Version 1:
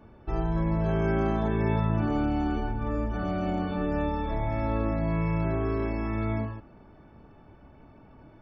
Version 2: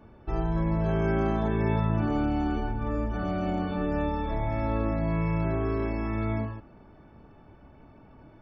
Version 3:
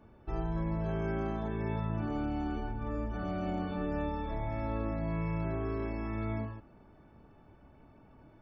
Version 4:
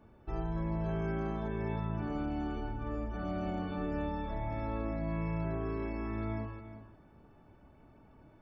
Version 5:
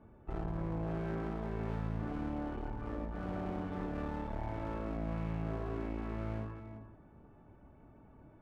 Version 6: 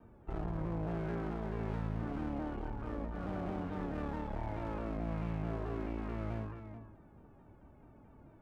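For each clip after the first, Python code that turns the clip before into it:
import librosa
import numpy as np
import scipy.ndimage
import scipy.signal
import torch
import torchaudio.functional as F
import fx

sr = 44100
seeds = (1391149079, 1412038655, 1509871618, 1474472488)

y1 = x
y2 = fx.rider(y1, sr, range_db=3, speed_s=2.0)
y2 = y2 * librosa.db_to_amplitude(-7.0)
y3 = y2 + 10.0 ** (-12.5 / 20.0) * np.pad(y2, (int(358 * sr / 1000.0), 0))[:len(y2)]
y3 = y3 * librosa.db_to_amplitude(-1.5)
y4 = fx.air_absorb(y3, sr, metres=470.0)
y4 = fx.clip_asym(y4, sr, top_db=-47.0, bottom_db=-28.5)
y4 = y4 * librosa.db_to_amplitude(1.5)
y5 = fx.vibrato_shape(y4, sr, shape='saw_down', rate_hz=4.6, depth_cents=100.0)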